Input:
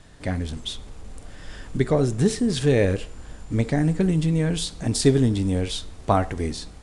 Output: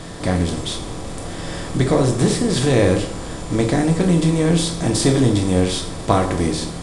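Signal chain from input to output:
compressor on every frequency bin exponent 0.6
on a send: high-shelf EQ 9,000 Hz +7.5 dB + convolution reverb RT60 0.50 s, pre-delay 3 ms, DRR 3.5 dB

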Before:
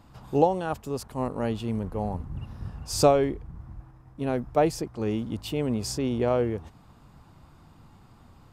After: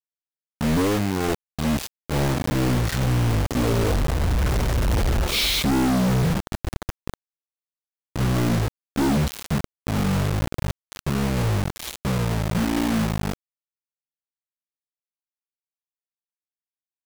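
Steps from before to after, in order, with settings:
source passing by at 0:02.49, 30 m/s, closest 3.5 metres
in parallel at −9 dB: hard clipping −27.5 dBFS, distortion −10 dB
on the sum: high-pass filter 97 Hz 12 dB per octave
flat-topped bell 4,300 Hz −8.5 dB 1 octave
reversed playback
downward compressor 16 to 1, threshold −39 dBFS, peak gain reduction 18.5 dB
reversed playback
wrong playback speed 15 ips tape played at 7.5 ips
automatic gain control gain up to 16.5 dB
log-companded quantiser 2 bits
level +6 dB

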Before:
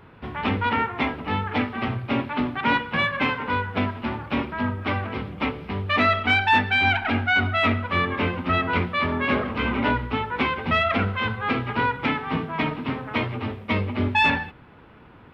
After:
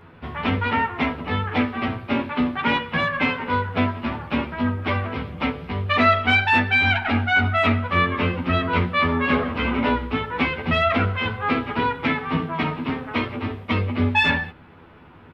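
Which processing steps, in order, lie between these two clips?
double-tracking delay 12 ms −3.5 dB

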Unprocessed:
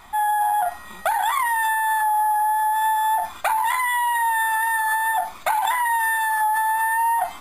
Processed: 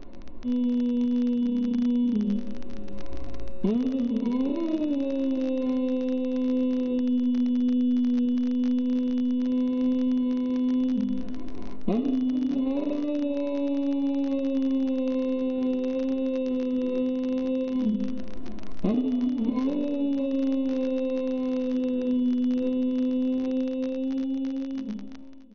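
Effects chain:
fade-out on the ending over 0.66 s
in parallel at +0.5 dB: downward compressor, threshold −30 dBFS, peak gain reduction 12.5 dB
on the sum: RIAA equalisation playback
surface crackle 110 per second −25 dBFS
change of speed 0.29×
on a send: single-tap delay 627 ms −17 dB
on the sum: level −7 dB

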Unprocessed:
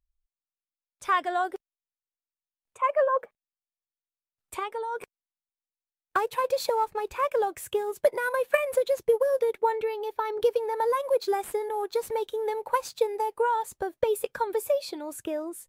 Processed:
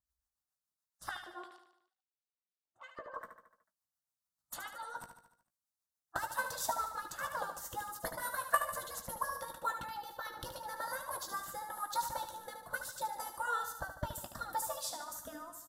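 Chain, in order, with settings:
notch filter 3,300 Hz, Q 14
gate on every frequency bin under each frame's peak −10 dB weak
phaser with its sweep stopped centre 1,000 Hz, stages 4
0:01.09–0:03.14: auto-filter band-pass square 2.9 Hz 420–3,500 Hz
rotating-speaker cabinet horn 7 Hz, later 0.7 Hz, at 0:10.51
double-tracking delay 17 ms −10 dB
repeating echo 74 ms, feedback 54%, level −8.5 dB
level +6.5 dB

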